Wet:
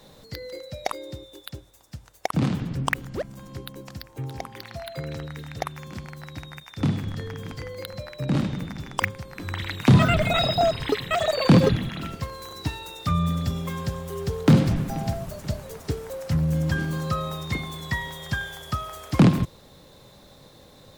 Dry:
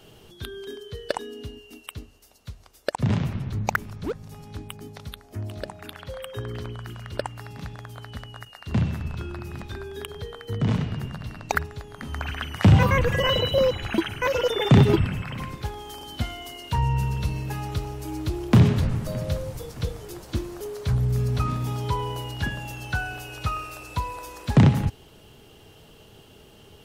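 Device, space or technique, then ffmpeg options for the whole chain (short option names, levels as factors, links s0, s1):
nightcore: -af "asetrate=56448,aresample=44100"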